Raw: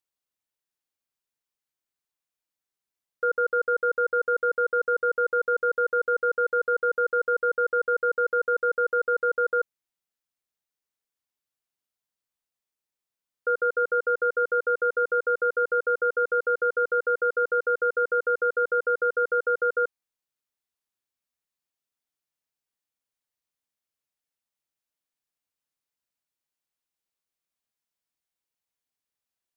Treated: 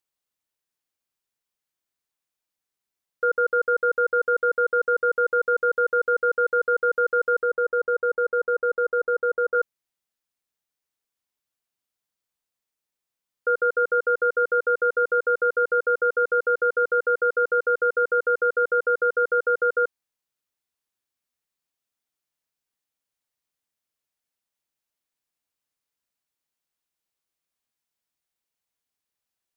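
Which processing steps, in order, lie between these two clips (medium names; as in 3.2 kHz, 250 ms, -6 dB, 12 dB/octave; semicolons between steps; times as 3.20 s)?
7.43–9.55 s: low-pass 1.3 kHz 12 dB/octave; trim +2.5 dB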